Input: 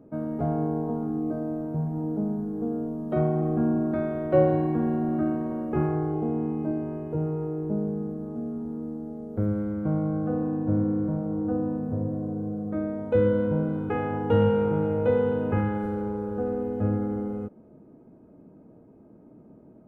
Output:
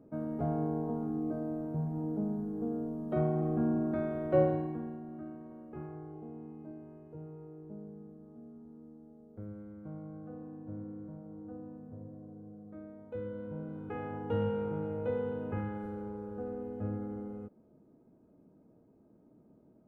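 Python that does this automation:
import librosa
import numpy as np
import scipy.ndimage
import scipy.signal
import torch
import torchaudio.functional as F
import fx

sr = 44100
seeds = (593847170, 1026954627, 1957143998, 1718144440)

y = fx.gain(x, sr, db=fx.line((4.42, -6.0), (5.03, -18.5), (13.29, -18.5), (14.03, -11.0)))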